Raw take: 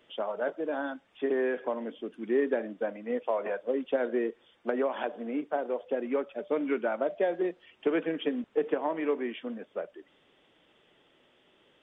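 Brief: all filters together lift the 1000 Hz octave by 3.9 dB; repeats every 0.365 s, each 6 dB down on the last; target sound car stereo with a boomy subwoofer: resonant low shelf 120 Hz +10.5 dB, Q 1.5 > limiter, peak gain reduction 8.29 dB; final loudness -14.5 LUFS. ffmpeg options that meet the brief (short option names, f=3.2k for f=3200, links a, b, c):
-af "lowshelf=f=120:t=q:w=1.5:g=10.5,equalizer=f=1k:t=o:g=5.5,aecho=1:1:365|730|1095|1460|1825|2190:0.501|0.251|0.125|0.0626|0.0313|0.0157,volume=17.5dB,alimiter=limit=-4dB:level=0:latency=1"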